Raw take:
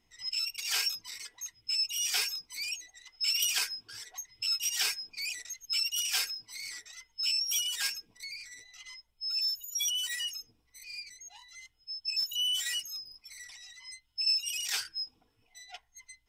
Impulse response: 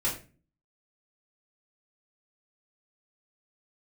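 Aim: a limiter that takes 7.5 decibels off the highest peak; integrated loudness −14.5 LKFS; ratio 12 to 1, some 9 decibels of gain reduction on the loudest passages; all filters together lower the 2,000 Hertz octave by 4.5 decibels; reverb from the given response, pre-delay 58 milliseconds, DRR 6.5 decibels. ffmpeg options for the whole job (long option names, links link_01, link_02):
-filter_complex "[0:a]equalizer=frequency=2000:width_type=o:gain=-6,acompressor=threshold=-34dB:ratio=12,alimiter=level_in=7.5dB:limit=-24dB:level=0:latency=1,volume=-7.5dB,asplit=2[link_01][link_02];[1:a]atrim=start_sample=2205,adelay=58[link_03];[link_02][link_03]afir=irnorm=-1:irlink=0,volume=-14dB[link_04];[link_01][link_04]amix=inputs=2:normalize=0,volume=23.5dB"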